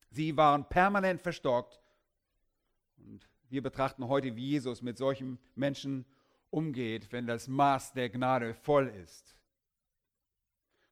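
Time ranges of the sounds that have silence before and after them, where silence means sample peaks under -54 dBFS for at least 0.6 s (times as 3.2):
3.01–9.35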